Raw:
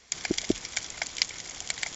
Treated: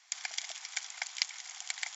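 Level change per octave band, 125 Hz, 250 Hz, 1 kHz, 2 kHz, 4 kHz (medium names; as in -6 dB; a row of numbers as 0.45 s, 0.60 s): under -40 dB, under -40 dB, -5.5 dB, -4.5 dB, -5.0 dB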